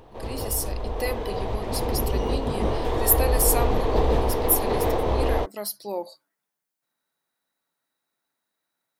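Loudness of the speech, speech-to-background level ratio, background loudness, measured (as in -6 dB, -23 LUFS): -28.0 LUFS, -1.5 dB, -26.5 LUFS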